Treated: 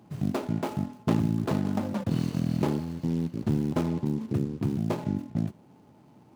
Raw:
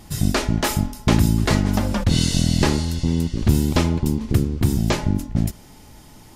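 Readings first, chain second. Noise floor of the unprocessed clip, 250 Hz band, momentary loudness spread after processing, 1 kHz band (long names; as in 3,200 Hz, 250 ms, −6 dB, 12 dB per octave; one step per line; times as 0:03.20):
−45 dBFS, −6.5 dB, 4 LU, −9.0 dB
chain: running median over 25 samples
high-pass filter 120 Hz 24 dB per octave
level −6 dB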